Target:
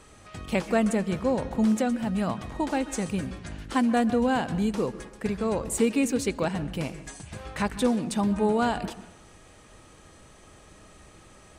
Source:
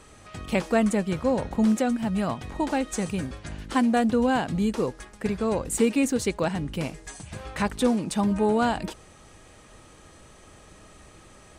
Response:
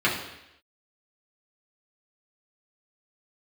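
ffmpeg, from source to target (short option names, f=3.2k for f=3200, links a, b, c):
-filter_complex "[0:a]asplit=2[a][b];[1:a]atrim=start_sample=2205,highshelf=f=6.2k:g=-9.5,adelay=128[c];[b][c]afir=irnorm=-1:irlink=0,volume=-29dB[d];[a][d]amix=inputs=2:normalize=0,volume=-1.5dB"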